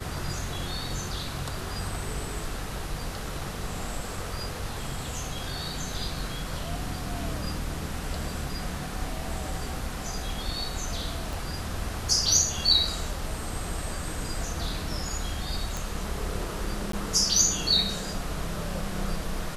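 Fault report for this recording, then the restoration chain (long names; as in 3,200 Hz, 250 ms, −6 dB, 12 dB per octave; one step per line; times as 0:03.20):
0:11.33: click
0:15.77: click
0:16.92–0:16.93: drop-out 13 ms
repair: click removal
repair the gap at 0:16.92, 13 ms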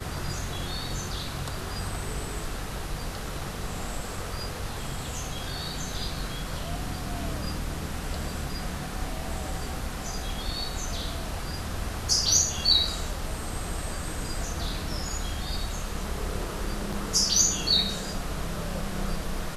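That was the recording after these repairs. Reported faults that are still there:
0:11.33: click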